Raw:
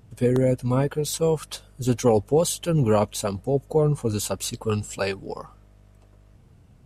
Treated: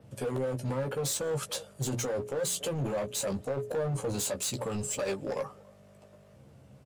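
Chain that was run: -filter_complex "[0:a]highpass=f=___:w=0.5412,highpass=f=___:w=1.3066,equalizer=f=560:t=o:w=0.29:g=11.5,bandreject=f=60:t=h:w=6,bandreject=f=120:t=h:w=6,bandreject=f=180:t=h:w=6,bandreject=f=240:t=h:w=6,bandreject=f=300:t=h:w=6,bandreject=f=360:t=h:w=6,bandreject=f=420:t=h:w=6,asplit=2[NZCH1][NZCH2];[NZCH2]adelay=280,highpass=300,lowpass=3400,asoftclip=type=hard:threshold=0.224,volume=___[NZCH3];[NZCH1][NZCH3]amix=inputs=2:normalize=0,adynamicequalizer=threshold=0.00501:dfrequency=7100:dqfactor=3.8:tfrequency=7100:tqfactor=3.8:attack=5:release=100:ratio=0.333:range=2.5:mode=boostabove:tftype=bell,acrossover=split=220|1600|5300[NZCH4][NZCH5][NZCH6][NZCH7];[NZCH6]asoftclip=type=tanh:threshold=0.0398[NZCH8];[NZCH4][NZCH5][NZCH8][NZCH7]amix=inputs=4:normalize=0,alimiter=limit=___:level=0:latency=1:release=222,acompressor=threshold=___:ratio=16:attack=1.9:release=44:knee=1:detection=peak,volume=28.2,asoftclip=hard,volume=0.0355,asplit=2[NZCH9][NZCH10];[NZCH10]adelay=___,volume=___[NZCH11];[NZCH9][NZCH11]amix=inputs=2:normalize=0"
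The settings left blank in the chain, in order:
87, 87, 0.0355, 0.211, 0.0501, 15, 0.473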